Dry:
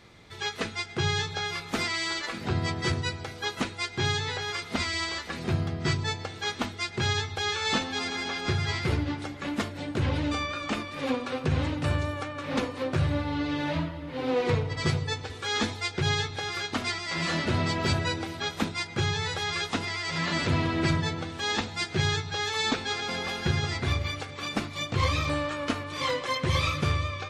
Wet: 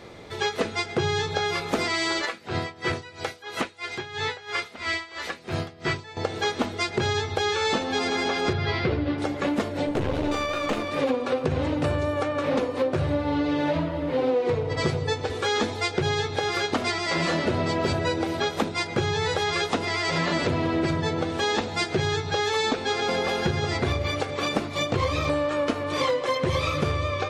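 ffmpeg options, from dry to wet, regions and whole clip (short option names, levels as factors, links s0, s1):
-filter_complex "[0:a]asettb=1/sr,asplit=3[s0][s1][s2];[s0]atrim=end=2.254[s3];[s1]atrim=start=2.25:end=6.17,asetpts=PTS-STARTPTS,afade=t=in:d=0.004:c=qsin,afade=t=out:st=3.916:d=0.004:c=qsin,tiltshelf=f=1200:g=-7.5,acrossover=split=2800[s4][s5];[s5]acompressor=threshold=0.00891:ratio=4:attack=1:release=60[s6];[s4][s6]amix=inputs=2:normalize=0,aeval=exprs='val(0)*pow(10,-20*(0.5-0.5*cos(2*PI*3*n/s))/20)':c=same[s7];[s2]atrim=start=6.166[s8];[s3][s7]acrossfade=d=0.004:c1=hsin:c2=qsin[s9];[s9][s8]acrossfade=d=0.004:c1=qsin:c2=hsin,asettb=1/sr,asplit=3[s10][s11][s12];[s10]atrim=end=8.534[s13];[s11]atrim=start=8.53:end=9.18,asetpts=PTS-STARTPTS,afade=t=in:d=0.004:c=qsin,afade=t=out:st=0.646:d=0.004:c=qsin,lowpass=f=4600:w=0.5412,lowpass=f=4600:w=1.3066,bandreject=f=880:w=17[s14];[s12]atrim=start=9.176[s15];[s13][s14]acrossfade=d=0.004:c1=hsin:c2=qsin[s16];[s16][s15]acrossfade=d=0.004:c1=qsin:c2=hsin,asettb=1/sr,asplit=3[s17][s18][s19];[s17]atrim=end=9.854[s20];[s18]atrim=start=9.85:end=10.92,asetpts=PTS-STARTPTS,afade=t=in:d=0.004:c=qsin,afade=t=out:st=1.066:d=0.004:c=qsin,bandreject=f=4900:w=18,aeval=exprs='clip(val(0),-1,0.0112)':c=same[s21];[s19]atrim=start=10.916[s22];[s20][s21]acrossfade=d=0.004:c1=hsin:c2=qsin[s23];[s23][s22]acrossfade=d=0.004:c1=qsin:c2=hsin,equalizer=f=500:t=o:w=1.7:g=10,acompressor=threshold=0.0447:ratio=6,volume=1.88"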